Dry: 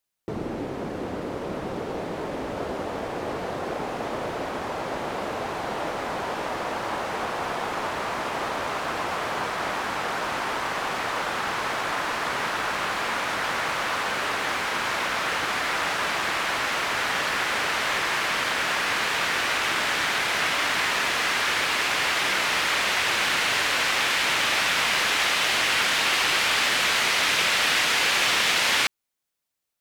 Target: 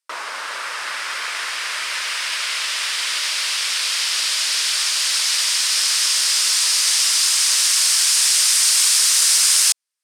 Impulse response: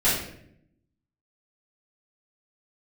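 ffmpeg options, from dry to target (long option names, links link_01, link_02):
-af "highpass=260,equalizer=frequency=260:width_type=q:width=4:gain=-9,equalizer=frequency=1700:width_type=q:width=4:gain=6,equalizer=frequency=3000:width_type=q:width=4:gain=7,lowpass=frequency=3800:width=0.5412,lowpass=frequency=3800:width=1.3066,asetrate=130977,aresample=44100,volume=4.5dB"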